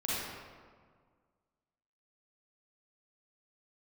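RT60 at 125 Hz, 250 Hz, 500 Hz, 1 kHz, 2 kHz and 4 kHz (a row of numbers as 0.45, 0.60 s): 2.0, 2.0, 1.8, 1.7, 1.3, 1.0 s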